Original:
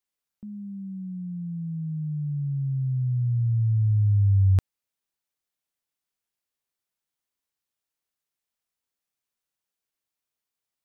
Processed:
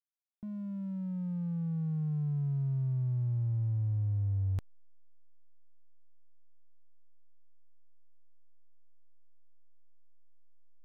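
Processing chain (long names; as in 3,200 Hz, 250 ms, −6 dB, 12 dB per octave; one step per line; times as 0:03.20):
downward compressor 10 to 1, threshold −28 dBFS, peak gain reduction 11.5 dB
slack as between gear wheels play −43 dBFS
level −1 dB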